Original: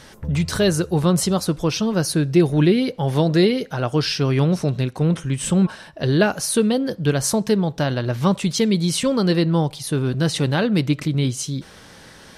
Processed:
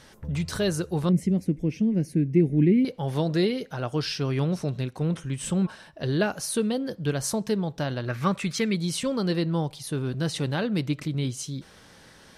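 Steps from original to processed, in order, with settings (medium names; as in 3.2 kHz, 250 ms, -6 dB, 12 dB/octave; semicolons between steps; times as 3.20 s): 1.09–2.85 s: FFT filter 120 Hz 0 dB, 190 Hz +6 dB, 270 Hz +7 dB, 1.3 kHz -25 dB, 2.1 kHz +1 dB, 3.8 kHz -22 dB, 6.1 kHz -14 dB; 8.07–8.76 s: time-frequency box 1.1–2.7 kHz +8 dB; trim -7.5 dB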